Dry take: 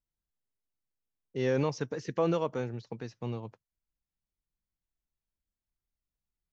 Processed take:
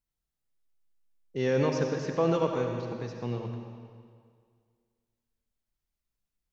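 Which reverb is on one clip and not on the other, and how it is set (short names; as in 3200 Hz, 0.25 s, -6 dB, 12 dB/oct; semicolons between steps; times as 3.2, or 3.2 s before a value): digital reverb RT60 2 s, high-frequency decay 0.9×, pre-delay 30 ms, DRR 3 dB; gain +1.5 dB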